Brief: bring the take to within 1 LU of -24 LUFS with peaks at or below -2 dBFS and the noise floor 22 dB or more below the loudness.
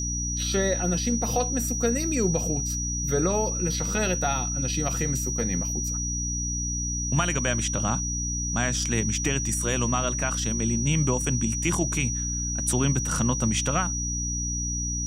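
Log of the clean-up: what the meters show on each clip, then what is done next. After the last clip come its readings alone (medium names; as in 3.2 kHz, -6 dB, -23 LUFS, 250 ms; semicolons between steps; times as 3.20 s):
hum 60 Hz; highest harmonic 300 Hz; hum level -29 dBFS; steady tone 5.8 kHz; tone level -29 dBFS; loudness -25.5 LUFS; peak level -10.5 dBFS; loudness target -24.0 LUFS
-> hum notches 60/120/180/240/300 Hz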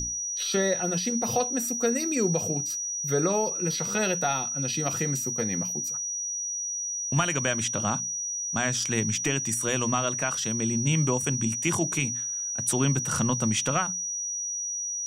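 hum not found; steady tone 5.8 kHz; tone level -29 dBFS
-> band-stop 5.8 kHz, Q 30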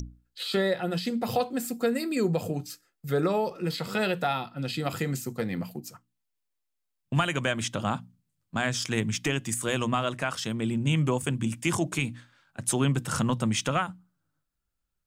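steady tone not found; loudness -28.5 LUFS; peak level -12.5 dBFS; loudness target -24.0 LUFS
-> trim +4.5 dB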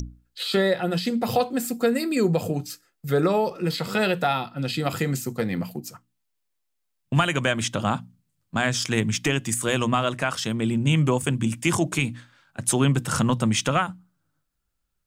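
loudness -24.0 LUFS; peak level -8.0 dBFS; noise floor -76 dBFS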